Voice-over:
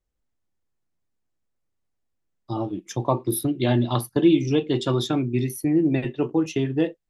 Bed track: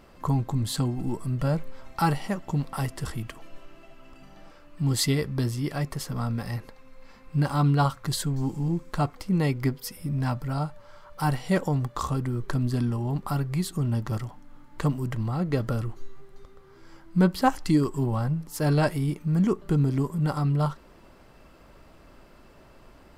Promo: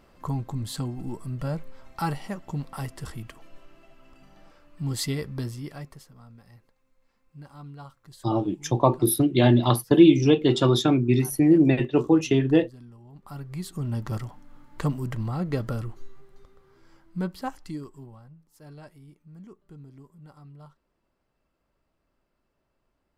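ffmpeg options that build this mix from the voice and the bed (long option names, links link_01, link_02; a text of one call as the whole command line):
ffmpeg -i stem1.wav -i stem2.wav -filter_complex "[0:a]adelay=5750,volume=3dB[link_01];[1:a]volume=15.5dB,afade=type=out:start_time=5.38:duration=0.74:silence=0.149624,afade=type=in:start_time=13.13:duration=1:silence=0.1,afade=type=out:start_time=15.31:duration=2.91:silence=0.0749894[link_02];[link_01][link_02]amix=inputs=2:normalize=0" out.wav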